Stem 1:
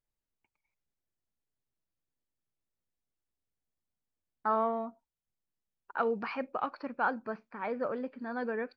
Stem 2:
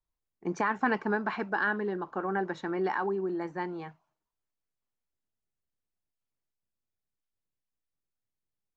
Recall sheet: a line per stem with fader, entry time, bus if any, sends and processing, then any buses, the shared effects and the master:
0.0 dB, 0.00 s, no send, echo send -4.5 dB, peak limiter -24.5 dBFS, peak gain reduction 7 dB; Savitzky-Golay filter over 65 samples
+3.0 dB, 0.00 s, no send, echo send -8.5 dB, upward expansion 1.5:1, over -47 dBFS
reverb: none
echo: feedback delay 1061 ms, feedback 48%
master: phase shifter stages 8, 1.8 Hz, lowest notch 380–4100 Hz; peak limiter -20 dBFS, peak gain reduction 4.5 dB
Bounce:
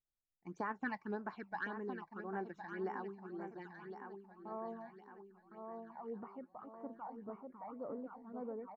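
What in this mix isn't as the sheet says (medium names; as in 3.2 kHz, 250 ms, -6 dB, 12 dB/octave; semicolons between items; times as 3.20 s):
stem 1 0.0 dB -> -9.5 dB; stem 2 +3.0 dB -> -8.5 dB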